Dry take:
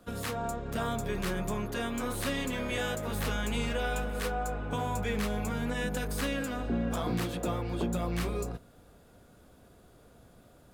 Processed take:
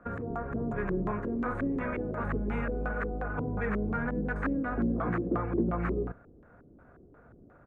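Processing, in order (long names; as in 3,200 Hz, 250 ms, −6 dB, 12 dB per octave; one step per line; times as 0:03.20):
flat-topped bell 4,000 Hz −12 dB 1.1 octaves
tempo change 1.4×
auto-filter low-pass square 2.8 Hz 350–1,500 Hz
harmonic generator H 5 −42 dB, 6 −44 dB, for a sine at −16.5 dBFS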